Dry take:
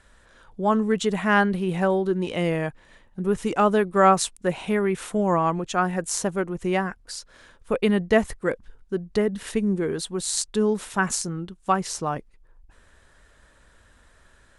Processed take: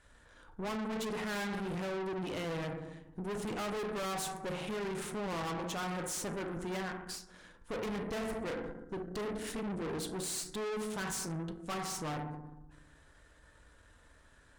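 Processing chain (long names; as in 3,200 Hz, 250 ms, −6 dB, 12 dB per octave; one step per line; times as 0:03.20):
feedback delay network reverb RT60 0.91 s, low-frequency decay 1.55×, high-frequency decay 0.35×, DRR 5 dB
tube saturation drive 33 dB, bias 0.7
every ending faded ahead of time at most 140 dB per second
level −2.5 dB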